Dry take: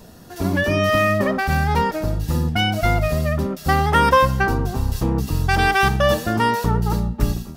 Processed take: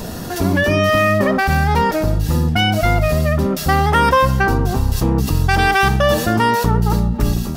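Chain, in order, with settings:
envelope flattener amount 50%

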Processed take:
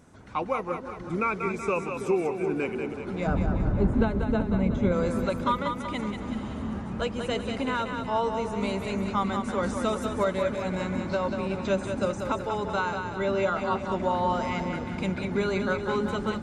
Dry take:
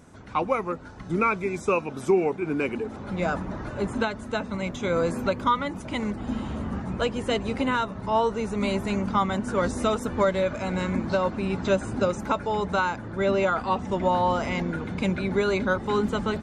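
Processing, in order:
0:03.27–0:04.92: spectral tilt −4 dB per octave
echo with a time of its own for lows and highs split 420 Hz, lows 327 ms, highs 188 ms, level −6 dB
level −4 dB

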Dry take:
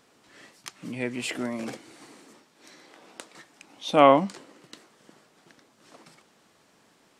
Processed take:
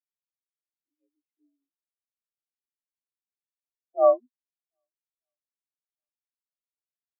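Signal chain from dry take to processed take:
single-sideband voice off tune +52 Hz 150–3,500 Hz
feedback echo with a long and a short gap by turns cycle 1,233 ms, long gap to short 1.5 to 1, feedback 52%, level −17 dB
every bin expanded away from the loudest bin 4 to 1
level −5 dB

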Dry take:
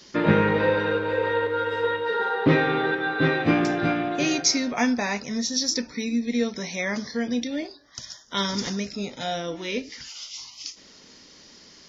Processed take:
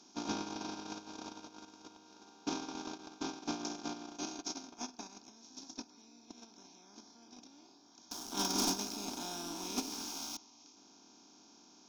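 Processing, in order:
compressor on every frequency bin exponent 0.2
high-pass filter 86 Hz 24 dB per octave
noise gate −8 dBFS, range −56 dB
low-shelf EQ 210 Hz −7 dB
downward compressor 3 to 1, threshold −54 dBFS, peak gain reduction 19 dB
0:08.11–0:10.37: leveller curve on the samples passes 5
phaser with its sweep stopped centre 510 Hz, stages 6
level +17 dB

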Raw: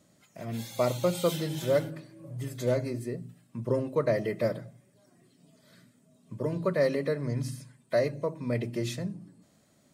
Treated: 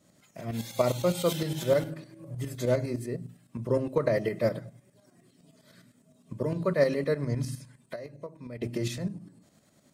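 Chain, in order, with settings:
0:07.57–0:08.62: downward compressor 3 to 1, threshold −44 dBFS, peak gain reduction 17 dB
shaped tremolo saw up 9.8 Hz, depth 60%
level +4 dB

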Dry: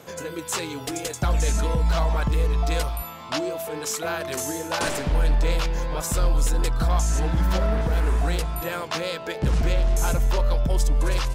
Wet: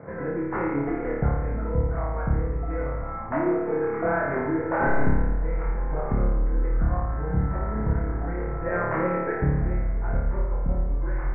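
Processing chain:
Chebyshev low-pass filter 2,100 Hz, order 6
spectral tilt −2 dB per octave
downward compressor 6 to 1, threshold −22 dBFS, peak gain reduction 12.5 dB
flutter between parallel walls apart 4.8 metres, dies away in 1.1 s

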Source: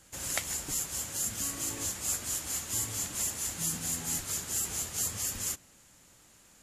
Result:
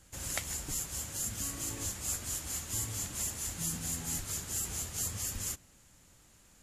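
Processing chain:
low-shelf EQ 120 Hz +10.5 dB
level −3.5 dB

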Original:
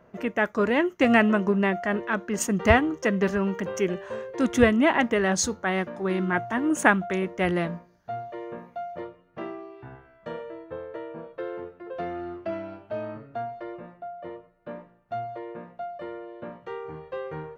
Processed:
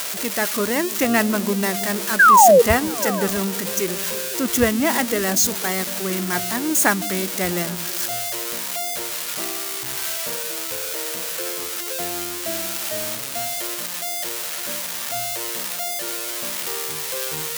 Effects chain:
spike at every zero crossing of −12 dBFS
sound drawn into the spectrogram fall, 0:02.19–0:02.62, 450–1,700 Hz −10 dBFS
echo through a band-pass that steps 164 ms, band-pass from 160 Hz, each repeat 0.7 octaves, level −9.5 dB

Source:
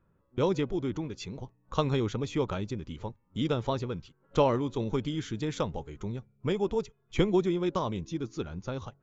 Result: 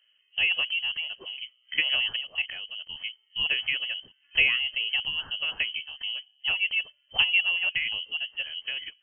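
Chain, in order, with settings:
0:02.21–0:02.93: output level in coarse steps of 13 dB
voice inversion scrambler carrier 3,100 Hz
level +1.5 dB

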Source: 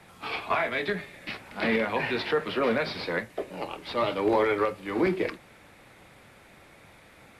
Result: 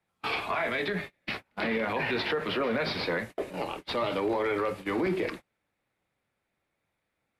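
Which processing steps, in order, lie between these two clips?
0:00.84–0:03.17: parametric band 8,400 Hz −4.5 dB 1.1 octaves
noise gate −39 dBFS, range −31 dB
brickwall limiter −24 dBFS, peak gain reduction 11 dB
level +3.5 dB

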